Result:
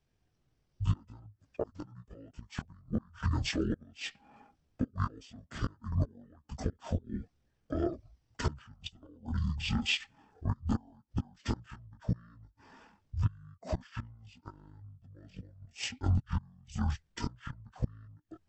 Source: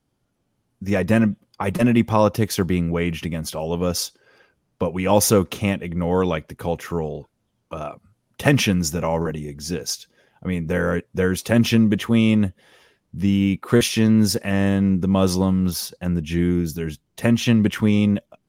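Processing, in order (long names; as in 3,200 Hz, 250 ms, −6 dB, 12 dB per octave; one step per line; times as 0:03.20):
gate with flip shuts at −12 dBFS, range −32 dB
multi-voice chorus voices 4, 0.48 Hz, delay 17 ms, depth 3.7 ms
pitch shifter −11.5 semitones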